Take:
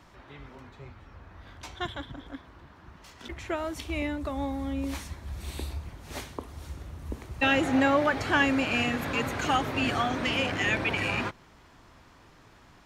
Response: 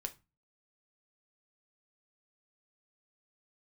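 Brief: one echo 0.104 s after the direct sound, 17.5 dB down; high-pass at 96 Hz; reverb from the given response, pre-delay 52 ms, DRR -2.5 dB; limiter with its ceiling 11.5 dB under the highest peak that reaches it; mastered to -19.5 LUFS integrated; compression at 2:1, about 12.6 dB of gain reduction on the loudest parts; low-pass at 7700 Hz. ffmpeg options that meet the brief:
-filter_complex "[0:a]highpass=96,lowpass=7.7k,acompressor=threshold=-43dB:ratio=2,alimiter=level_in=10.5dB:limit=-24dB:level=0:latency=1,volume=-10.5dB,aecho=1:1:104:0.133,asplit=2[a][b];[1:a]atrim=start_sample=2205,adelay=52[c];[b][c]afir=irnorm=-1:irlink=0,volume=4dB[d];[a][d]amix=inputs=2:normalize=0,volume=21dB"

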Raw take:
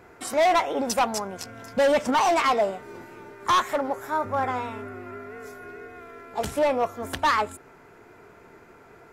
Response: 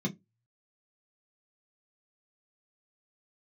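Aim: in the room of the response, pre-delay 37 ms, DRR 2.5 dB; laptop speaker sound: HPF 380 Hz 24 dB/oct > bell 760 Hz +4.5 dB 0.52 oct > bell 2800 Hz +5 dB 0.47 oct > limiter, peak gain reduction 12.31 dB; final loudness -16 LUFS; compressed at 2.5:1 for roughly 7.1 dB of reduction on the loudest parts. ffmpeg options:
-filter_complex "[0:a]acompressor=threshold=-29dB:ratio=2.5,asplit=2[a][b];[1:a]atrim=start_sample=2205,adelay=37[c];[b][c]afir=irnorm=-1:irlink=0,volume=-6dB[d];[a][d]amix=inputs=2:normalize=0,highpass=f=380:w=0.5412,highpass=f=380:w=1.3066,equalizer=f=760:t=o:w=0.52:g=4.5,equalizer=f=2.8k:t=o:w=0.47:g=5,volume=18dB,alimiter=limit=-6dB:level=0:latency=1"

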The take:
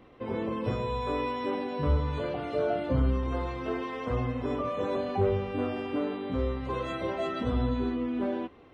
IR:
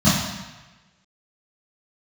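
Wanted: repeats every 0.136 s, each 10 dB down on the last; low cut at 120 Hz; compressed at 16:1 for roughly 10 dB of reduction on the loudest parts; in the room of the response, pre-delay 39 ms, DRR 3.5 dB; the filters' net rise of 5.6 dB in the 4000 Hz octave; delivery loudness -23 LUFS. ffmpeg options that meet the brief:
-filter_complex "[0:a]highpass=120,equalizer=f=4k:t=o:g=7,acompressor=threshold=-32dB:ratio=16,aecho=1:1:136|272|408|544:0.316|0.101|0.0324|0.0104,asplit=2[a][b];[1:a]atrim=start_sample=2205,adelay=39[c];[b][c]afir=irnorm=-1:irlink=0,volume=-24dB[d];[a][d]amix=inputs=2:normalize=0,volume=8dB"

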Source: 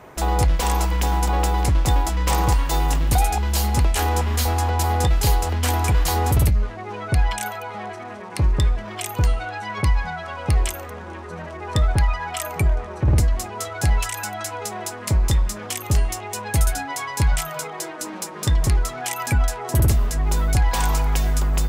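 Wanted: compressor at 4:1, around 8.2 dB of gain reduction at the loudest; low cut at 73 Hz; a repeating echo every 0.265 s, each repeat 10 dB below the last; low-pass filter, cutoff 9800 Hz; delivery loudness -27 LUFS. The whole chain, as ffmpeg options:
-af "highpass=73,lowpass=9.8k,acompressor=threshold=-26dB:ratio=4,aecho=1:1:265|530|795|1060:0.316|0.101|0.0324|0.0104,volume=3dB"

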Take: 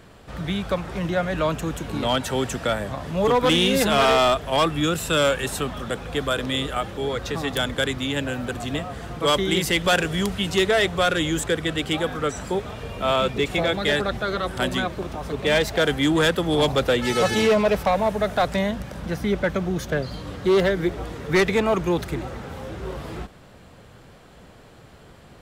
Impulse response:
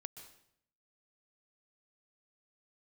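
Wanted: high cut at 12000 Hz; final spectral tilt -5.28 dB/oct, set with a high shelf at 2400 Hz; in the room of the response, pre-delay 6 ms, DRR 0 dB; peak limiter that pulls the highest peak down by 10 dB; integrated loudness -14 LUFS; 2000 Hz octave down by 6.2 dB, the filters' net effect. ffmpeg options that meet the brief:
-filter_complex "[0:a]lowpass=12k,equalizer=f=2k:t=o:g=-6.5,highshelf=f=2.4k:g=-3.5,alimiter=limit=-23.5dB:level=0:latency=1,asplit=2[a][b];[1:a]atrim=start_sample=2205,adelay=6[c];[b][c]afir=irnorm=-1:irlink=0,volume=4.5dB[d];[a][d]amix=inputs=2:normalize=0,volume=14.5dB"

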